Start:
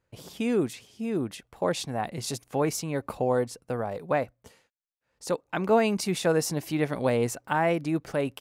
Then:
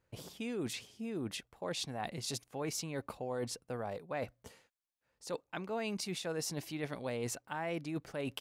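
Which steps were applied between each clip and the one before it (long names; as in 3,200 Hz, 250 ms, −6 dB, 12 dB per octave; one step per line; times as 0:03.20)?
dynamic equaliser 3,900 Hz, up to +6 dB, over −47 dBFS, Q 0.7
reversed playback
downward compressor 4 to 1, threshold −36 dBFS, peak gain reduction 16 dB
reversed playback
level −1.5 dB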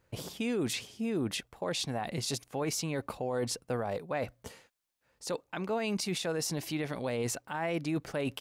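brickwall limiter −31.5 dBFS, peak gain reduction 7.5 dB
level +7.5 dB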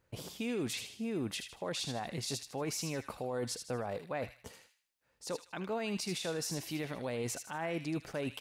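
delay with a high-pass on its return 78 ms, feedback 36%, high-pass 1,900 Hz, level −6 dB
level −4 dB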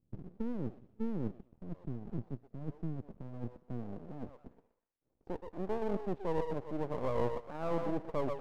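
low-pass filter sweep 200 Hz → 550 Hz, 0:03.45–0:06.90
echo through a band-pass that steps 123 ms, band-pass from 600 Hz, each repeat 0.7 octaves, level −3 dB
half-wave rectification
level +1.5 dB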